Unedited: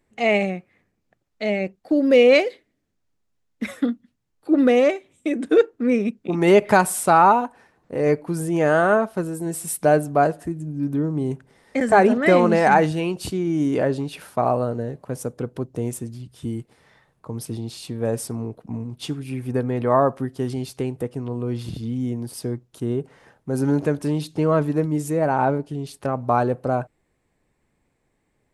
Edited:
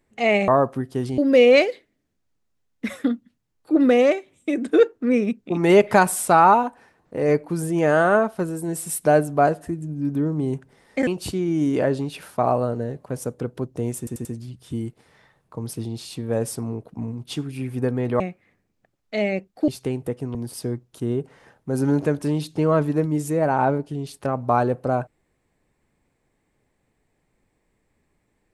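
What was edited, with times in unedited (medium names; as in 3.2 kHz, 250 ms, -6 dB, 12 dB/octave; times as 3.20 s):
0.48–1.96 s: swap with 19.92–20.62 s
11.85–13.06 s: delete
15.97 s: stutter 0.09 s, 4 plays
21.29–22.15 s: delete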